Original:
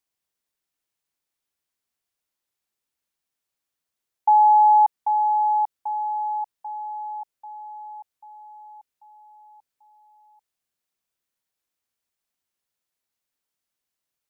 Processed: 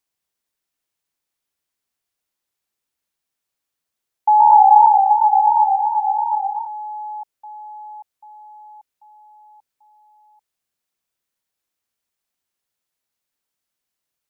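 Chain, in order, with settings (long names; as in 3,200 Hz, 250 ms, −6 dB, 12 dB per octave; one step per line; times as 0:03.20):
0:04.28–0:06.67: feedback echo with a swinging delay time 116 ms, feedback 77%, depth 157 cents, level −4 dB
level +2.5 dB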